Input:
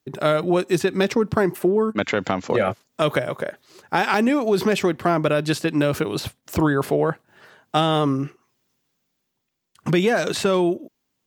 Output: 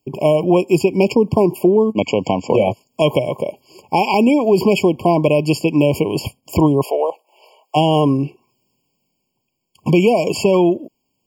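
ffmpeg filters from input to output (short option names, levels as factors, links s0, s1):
-filter_complex "[0:a]asplit=3[s0][s1][s2];[s0]afade=t=out:st=6.82:d=0.02[s3];[s1]highpass=f=490:w=0.5412,highpass=f=490:w=1.3066,afade=t=in:st=6.82:d=0.02,afade=t=out:st=7.75:d=0.02[s4];[s2]afade=t=in:st=7.75:d=0.02[s5];[s3][s4][s5]amix=inputs=3:normalize=0,afftfilt=real='re*eq(mod(floor(b*sr/1024/1100),2),0)':imag='im*eq(mod(floor(b*sr/1024/1100),2),0)':win_size=1024:overlap=0.75,volume=2"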